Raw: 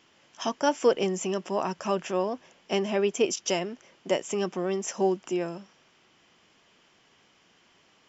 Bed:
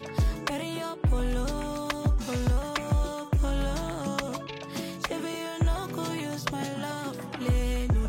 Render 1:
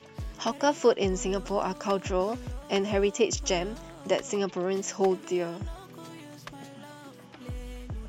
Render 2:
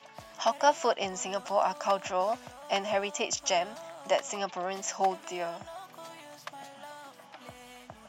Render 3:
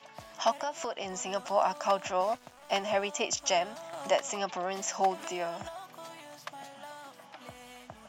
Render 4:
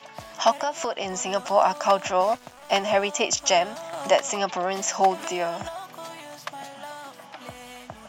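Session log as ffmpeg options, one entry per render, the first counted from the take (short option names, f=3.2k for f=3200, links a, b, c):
-filter_complex "[1:a]volume=-12.5dB[a];[0:a][a]amix=inputs=2:normalize=0"
-af "highpass=190,lowshelf=f=540:t=q:w=3:g=-7"
-filter_complex "[0:a]asettb=1/sr,asplit=3[a][b][c];[a]atrim=end=0.584[d];[b]atrim=start=0.58:end=1.27,asetpts=PTS-STARTPTS,afade=t=in:d=0.004:c=qsin,afade=t=out:st=0.686:d=0.004:c=qsin,acompressor=threshold=-32dB:ratio=4:attack=3.2:release=140:knee=1:detection=peak[e];[c]atrim=start=1.266[f];[d][e]acrossfade=d=0.004:c1=hsin:c2=qsin[g];[g][f]acrossfade=d=0.004:c1=qsin:c2=hsin,asettb=1/sr,asplit=3[h][i][j];[h]atrim=end=2.214[k];[i]atrim=start=2.21:end=2.82,asetpts=PTS-STARTPTS,afade=t=in:d=0.004:c=qsin,afade=t=out:st=0.606:d=0.004:c=qsin,aeval=exprs='sgn(val(0))*max(abs(val(0))-0.00335,0)':c=same[l];[j]atrim=start=2.816[m];[k][l]acrossfade=d=0.004:c1=hsin:c2=qsin[n];[n][m]acrossfade=d=0.004:c1=qsin:c2=hsin,asettb=1/sr,asplit=3[o][p][q];[o]atrim=end=3.934[r];[p]atrim=start=3.93:end=5.69,asetpts=PTS-STARTPTS,afade=t=in:d=0.004:c=qsin,afade=t=out:st=1.756:d=0.004:c=qsin,acompressor=mode=upward:threshold=-31dB:ratio=2.5:attack=3.2:release=140:knee=2.83:detection=peak[s];[q]atrim=start=5.686[t];[r][s]acrossfade=d=0.004:c1=hsin:c2=qsin[u];[u][t]acrossfade=d=0.004:c1=qsin:c2=hsin"
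-af "volume=7.5dB"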